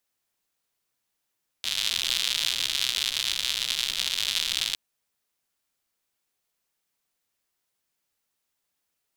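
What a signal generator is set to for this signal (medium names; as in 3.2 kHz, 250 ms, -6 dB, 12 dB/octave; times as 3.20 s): rain from filtered ticks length 3.11 s, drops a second 140, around 3.5 kHz, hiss -22 dB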